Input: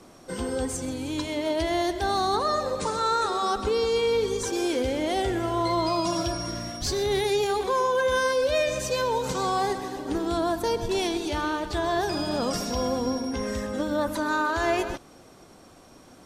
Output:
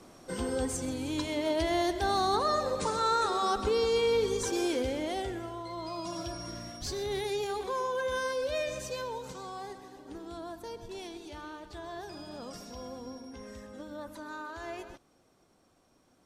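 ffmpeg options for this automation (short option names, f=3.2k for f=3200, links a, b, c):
-af "volume=4.5dB,afade=t=out:st=4.55:d=1.09:silence=0.223872,afade=t=in:st=5.64:d=0.87:silence=0.421697,afade=t=out:st=8.72:d=0.71:silence=0.421697"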